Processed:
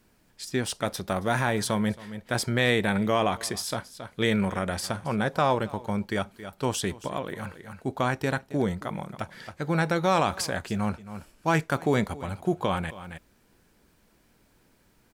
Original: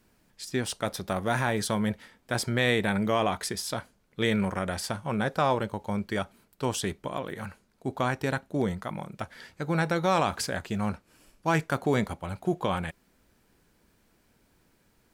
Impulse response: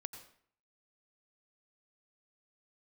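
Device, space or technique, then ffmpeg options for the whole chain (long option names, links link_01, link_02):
ducked delay: -filter_complex "[0:a]asplit=3[link_01][link_02][link_03];[link_02]adelay=272,volume=-6dB[link_04];[link_03]apad=whole_len=679391[link_05];[link_04][link_05]sidechaincompress=threshold=-45dB:ratio=5:attack=12:release=244[link_06];[link_01][link_06]amix=inputs=2:normalize=0,volume=1.5dB"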